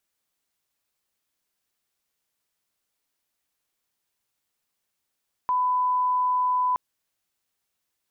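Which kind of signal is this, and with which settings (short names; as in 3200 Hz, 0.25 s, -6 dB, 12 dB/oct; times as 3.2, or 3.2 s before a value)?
line-up tone -20 dBFS 1.27 s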